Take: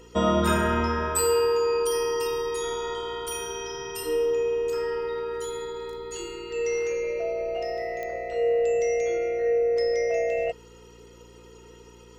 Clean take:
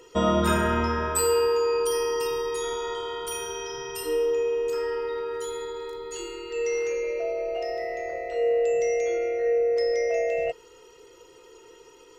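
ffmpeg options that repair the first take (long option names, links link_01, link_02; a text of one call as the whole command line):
ffmpeg -i in.wav -af "adeclick=threshold=4,bandreject=frequency=58.7:width_type=h:width=4,bandreject=frequency=117.4:width_type=h:width=4,bandreject=frequency=176.1:width_type=h:width=4,bandreject=frequency=234.8:width_type=h:width=4,bandreject=frequency=293.5:width_type=h:width=4,bandreject=frequency=352.2:width_type=h:width=4" out.wav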